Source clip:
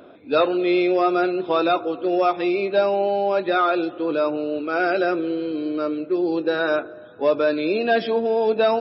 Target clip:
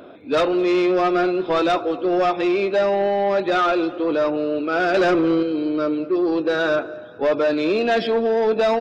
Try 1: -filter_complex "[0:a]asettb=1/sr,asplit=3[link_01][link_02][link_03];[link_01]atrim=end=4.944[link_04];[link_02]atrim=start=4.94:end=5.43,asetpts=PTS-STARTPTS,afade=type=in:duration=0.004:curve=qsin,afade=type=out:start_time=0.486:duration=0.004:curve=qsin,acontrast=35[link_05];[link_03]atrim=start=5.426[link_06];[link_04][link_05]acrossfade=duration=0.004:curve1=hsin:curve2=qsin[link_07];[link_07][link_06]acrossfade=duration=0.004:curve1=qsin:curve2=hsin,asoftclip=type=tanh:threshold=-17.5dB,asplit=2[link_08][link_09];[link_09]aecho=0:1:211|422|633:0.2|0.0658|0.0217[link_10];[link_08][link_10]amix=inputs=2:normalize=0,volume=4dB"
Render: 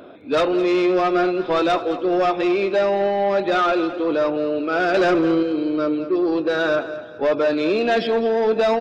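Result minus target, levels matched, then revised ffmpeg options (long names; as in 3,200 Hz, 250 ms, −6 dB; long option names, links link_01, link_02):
echo-to-direct +9 dB
-filter_complex "[0:a]asettb=1/sr,asplit=3[link_01][link_02][link_03];[link_01]atrim=end=4.944[link_04];[link_02]atrim=start=4.94:end=5.43,asetpts=PTS-STARTPTS,afade=type=in:duration=0.004:curve=qsin,afade=type=out:start_time=0.486:duration=0.004:curve=qsin,acontrast=35[link_05];[link_03]atrim=start=5.426[link_06];[link_04][link_05]acrossfade=duration=0.004:curve1=hsin:curve2=qsin[link_07];[link_07][link_06]acrossfade=duration=0.004:curve1=qsin:curve2=hsin,asoftclip=type=tanh:threshold=-17.5dB,asplit=2[link_08][link_09];[link_09]aecho=0:1:211|422:0.0708|0.0234[link_10];[link_08][link_10]amix=inputs=2:normalize=0,volume=4dB"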